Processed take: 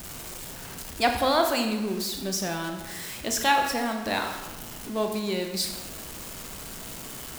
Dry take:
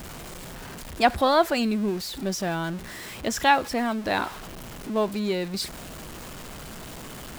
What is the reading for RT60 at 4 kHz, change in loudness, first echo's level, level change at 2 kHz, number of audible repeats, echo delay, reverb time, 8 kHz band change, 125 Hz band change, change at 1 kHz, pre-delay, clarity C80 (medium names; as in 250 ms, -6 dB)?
0.85 s, -3.0 dB, no echo, -1.0 dB, no echo, no echo, 1.2 s, +4.5 dB, -3.5 dB, -2.0 dB, 22 ms, 8.0 dB